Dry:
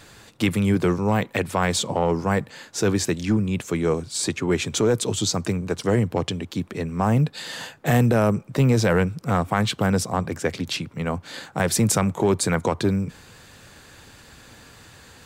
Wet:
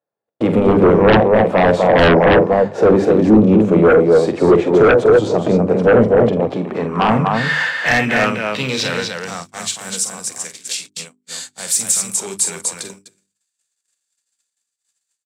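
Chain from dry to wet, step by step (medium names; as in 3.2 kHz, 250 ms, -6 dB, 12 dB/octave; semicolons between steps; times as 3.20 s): in parallel at +1 dB: peak limiter -15.5 dBFS, peak gain reduction 8.5 dB; on the sum: harmonic-percussive split percussive -11 dB; band-pass sweep 600 Hz -> 7.9 kHz, 6.21–9.81 s; harmony voices +3 st -13 dB; high-pass 130 Hz 12 dB/octave; on a send: loudspeakers at several distances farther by 16 m -9 dB, 85 m -5 dB; on the sum: gate -48 dBFS, range -51 dB; sine folder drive 15 dB, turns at -8 dBFS; bass shelf 440 Hz +7.5 dB; hum notches 50/100/150/200/250/300/350/400 Hz; trim -1 dB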